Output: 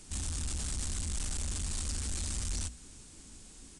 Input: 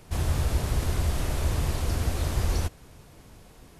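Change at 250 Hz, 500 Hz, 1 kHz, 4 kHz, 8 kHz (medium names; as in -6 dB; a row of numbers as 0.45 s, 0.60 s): -10.5 dB, -18.0 dB, -15.0 dB, -3.0 dB, +3.5 dB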